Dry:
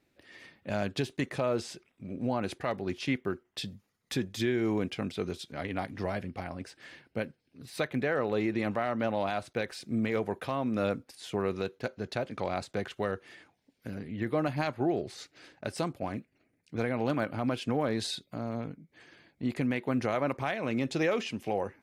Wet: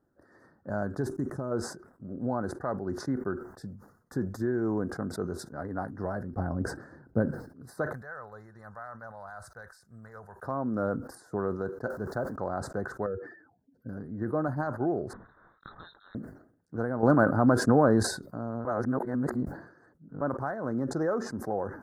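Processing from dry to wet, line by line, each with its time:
0:01.09–0:01.51: gain on a spectral selection 430–5,100 Hz −8 dB
0:06.36–0:07.26: low-shelf EQ 440 Hz +11.5 dB
0:07.93–0:10.43: guitar amp tone stack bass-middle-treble 10-0-10
0:11.90–0:12.36: converter with a step at zero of −44.5 dBFS
0:13.06–0:13.89: expanding power law on the bin magnitudes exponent 2.1
0:15.13–0:16.15: voice inversion scrambler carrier 3,900 Hz
0:17.03–0:18.03: clip gain +8.5 dB
0:18.65–0:20.21: reverse
whole clip: elliptic band-stop filter 1,500–4,800 Hz, stop band 50 dB; high shelf with overshoot 3,600 Hz −10 dB, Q 3; level that may fall only so fast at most 92 dB per second

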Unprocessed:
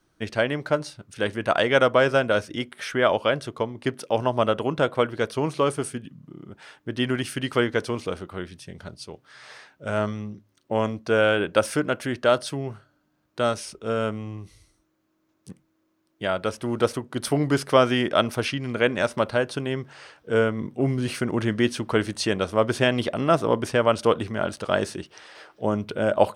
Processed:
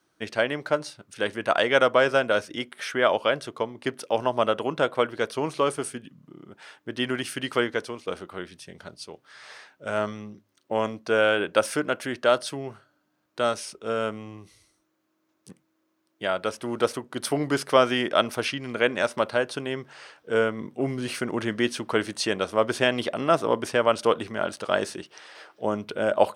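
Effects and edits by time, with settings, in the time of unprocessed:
0:07.47–0:08.07: fade out equal-power, to −10.5 dB
whole clip: high-pass filter 310 Hz 6 dB per octave

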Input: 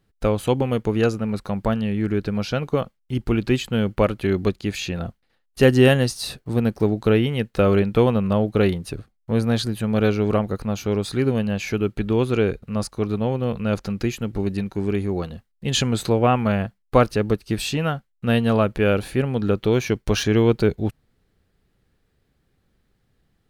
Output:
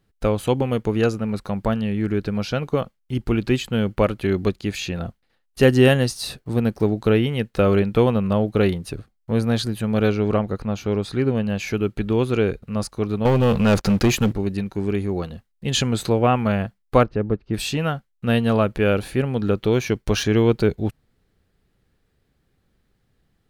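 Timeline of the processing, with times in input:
0:10.11–0:11.46: high-shelf EQ 9,900 Hz → 5,100 Hz −11 dB
0:13.25–0:14.33: leveller curve on the samples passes 3
0:17.03–0:17.54: head-to-tape spacing loss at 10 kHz 44 dB

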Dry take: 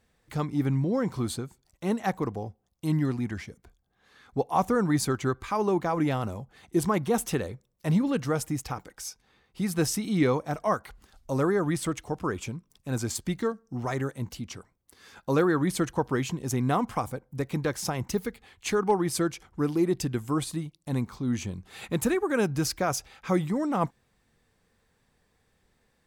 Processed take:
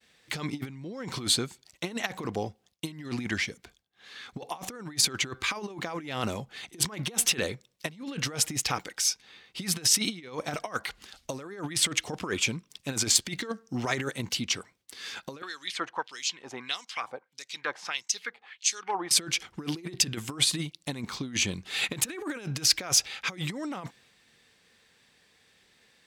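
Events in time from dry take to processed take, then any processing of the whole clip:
0:15.42–0:19.11: auto-filter band-pass sine 1.6 Hz 770–6,700 Hz
whole clip: compressor whose output falls as the input rises −31 dBFS, ratio −0.5; meter weighting curve D; downward expander −59 dBFS

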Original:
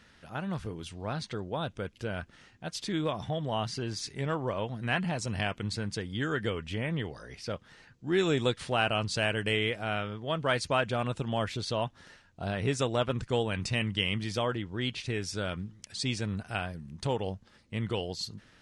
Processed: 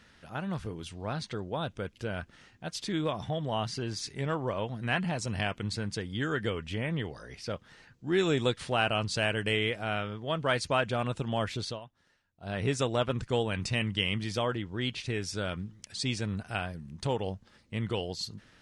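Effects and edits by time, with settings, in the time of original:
0:11.65–0:12.56: duck −16 dB, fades 0.15 s

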